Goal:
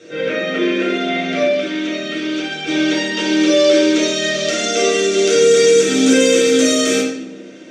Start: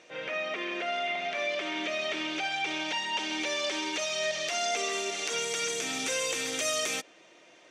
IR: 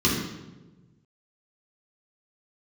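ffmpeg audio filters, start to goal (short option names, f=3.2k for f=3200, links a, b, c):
-filter_complex "[0:a]asettb=1/sr,asplit=3[a][b][c];[a]atrim=end=1.424[d];[b]atrim=start=1.42:end=2.67,asetpts=PTS-STARTPTS,afade=t=in:d=0.004:c=qsin,afade=t=out:st=1.246:d=0.004:c=qsin,acrossover=split=240|910[e][f][g];[e]acompressor=threshold=-56dB:ratio=4[h];[f]acompressor=threshold=-46dB:ratio=4[i];[g]acompressor=threshold=-37dB:ratio=4[j];[h][i][j]amix=inputs=3:normalize=0[k];[c]atrim=start=2.666[l];[d][k]acrossfade=d=0.004:c1=hsin:c2=qsin[m];[m][l]acrossfade=d=0.004:c1=qsin:c2=hsin[n];[1:a]atrim=start_sample=2205,asetrate=57330,aresample=44100[o];[n][o]afir=irnorm=-1:irlink=0"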